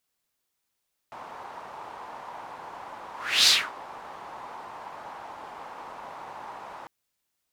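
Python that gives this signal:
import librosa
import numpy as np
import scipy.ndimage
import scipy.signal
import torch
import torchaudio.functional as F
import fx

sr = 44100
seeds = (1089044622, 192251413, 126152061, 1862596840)

y = fx.whoosh(sr, seeds[0], length_s=5.75, peak_s=2.36, rise_s=0.35, fall_s=0.26, ends_hz=910.0, peak_hz=4400.0, q=3.2, swell_db=24.0)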